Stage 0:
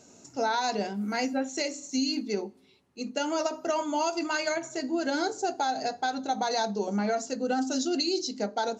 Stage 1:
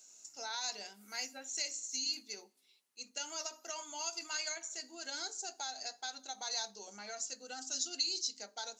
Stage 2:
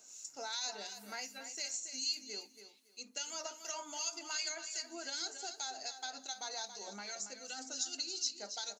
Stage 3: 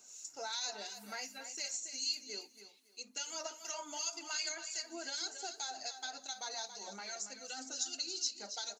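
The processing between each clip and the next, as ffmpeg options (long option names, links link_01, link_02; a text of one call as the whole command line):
ffmpeg -i in.wav -af "aderivative,volume=1dB" out.wav
ffmpeg -i in.wav -filter_complex "[0:a]acompressor=threshold=-52dB:ratio=1.5,acrossover=split=1800[link_01][link_02];[link_01]aeval=exprs='val(0)*(1-0.7/2+0.7/2*cos(2*PI*2.6*n/s))':channel_layout=same[link_03];[link_02]aeval=exprs='val(0)*(1-0.7/2-0.7/2*cos(2*PI*2.6*n/s))':channel_layout=same[link_04];[link_03][link_04]amix=inputs=2:normalize=0,aecho=1:1:279|558|837:0.316|0.0632|0.0126,volume=8dB" out.wav
ffmpeg -i in.wav -af "flanger=delay=0.7:depth=2.7:regen=-40:speed=1.9:shape=triangular,volume=4dB" out.wav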